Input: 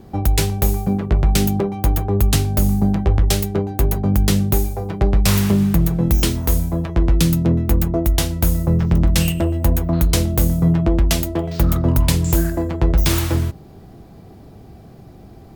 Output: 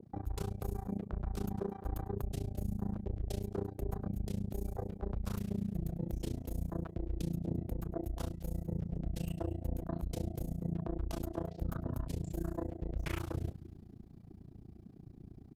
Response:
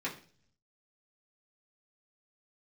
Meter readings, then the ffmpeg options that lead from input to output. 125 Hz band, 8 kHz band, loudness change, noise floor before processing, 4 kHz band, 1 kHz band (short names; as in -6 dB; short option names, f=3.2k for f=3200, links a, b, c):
-21.0 dB, -29.5 dB, -21.5 dB, -42 dBFS, -29.0 dB, -19.5 dB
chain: -filter_complex "[0:a]lowshelf=f=310:g=-4.5,aresample=32000,aresample=44100,areverse,acompressor=threshold=-28dB:ratio=5,areverse,asplit=2[a][b];[b]adelay=221.6,volume=-14dB,highshelf=f=4k:g=-4.99[c];[a][c]amix=inputs=2:normalize=0,afwtdn=0.0158,tremolo=f=29:d=0.974,adynamicequalizer=threshold=0.00158:dfrequency=1600:dqfactor=0.7:tfrequency=1600:tqfactor=0.7:attack=5:release=100:ratio=0.375:range=2.5:mode=boostabove:tftype=highshelf,volume=-3dB"